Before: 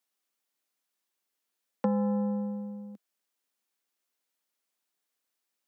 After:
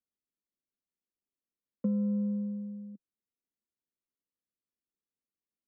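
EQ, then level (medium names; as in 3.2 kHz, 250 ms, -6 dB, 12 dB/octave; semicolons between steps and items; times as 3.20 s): boxcar filter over 53 samples; bass shelf 230 Hz +10 dB; -5.5 dB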